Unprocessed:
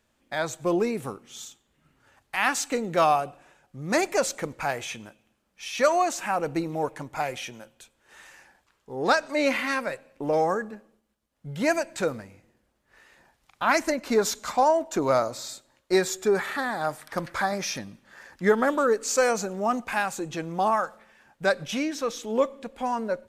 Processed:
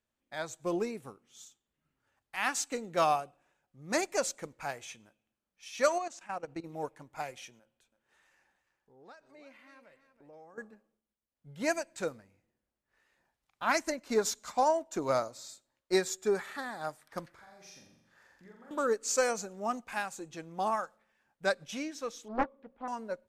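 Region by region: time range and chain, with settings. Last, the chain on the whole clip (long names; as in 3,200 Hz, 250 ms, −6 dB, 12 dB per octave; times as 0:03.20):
0:05.98–0:06.64: low-pass filter 7,500 Hz + output level in coarse steps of 13 dB
0:07.59–0:10.58: high-shelf EQ 4,500 Hz −5 dB + downward compressor 2 to 1, threshold −48 dBFS + single-tap delay 329 ms −11.5 dB
0:17.29–0:18.71: downward compressor 5 to 1, threshold −40 dBFS + flutter between parallel walls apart 7.4 metres, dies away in 0.8 s
0:22.28–0:22.88: low-pass filter 1,700 Hz + mains-hum notches 60/120/180/240 Hz + highs frequency-modulated by the lows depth 0.85 ms
whole clip: dynamic equaliser 7,000 Hz, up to +5 dB, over −47 dBFS, Q 0.86; expander for the loud parts 1.5 to 1, over −40 dBFS; level −5 dB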